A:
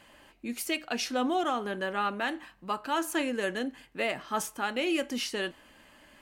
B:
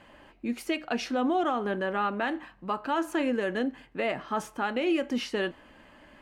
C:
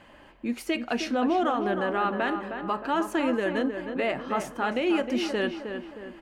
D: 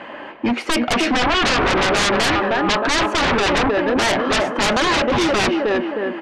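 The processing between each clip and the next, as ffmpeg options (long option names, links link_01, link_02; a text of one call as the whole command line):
ffmpeg -i in.wav -af "lowpass=frequency=1600:poles=1,alimiter=limit=-23.5dB:level=0:latency=1:release=115,volume=5dB" out.wav
ffmpeg -i in.wav -filter_complex "[0:a]asplit=2[link_01][link_02];[link_02]adelay=312,lowpass=frequency=2100:poles=1,volume=-7dB,asplit=2[link_03][link_04];[link_04]adelay=312,lowpass=frequency=2100:poles=1,volume=0.49,asplit=2[link_05][link_06];[link_06]adelay=312,lowpass=frequency=2100:poles=1,volume=0.49,asplit=2[link_07][link_08];[link_08]adelay=312,lowpass=frequency=2100:poles=1,volume=0.49,asplit=2[link_09][link_10];[link_10]adelay=312,lowpass=frequency=2100:poles=1,volume=0.49,asplit=2[link_11][link_12];[link_12]adelay=312,lowpass=frequency=2100:poles=1,volume=0.49[link_13];[link_01][link_03][link_05][link_07][link_09][link_11][link_13]amix=inputs=7:normalize=0,volume=1.5dB" out.wav
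ffmpeg -i in.wav -af "highpass=270,lowpass=2700,aeval=exprs='0.2*sin(PI/2*6.31*val(0)/0.2)':channel_layout=same" out.wav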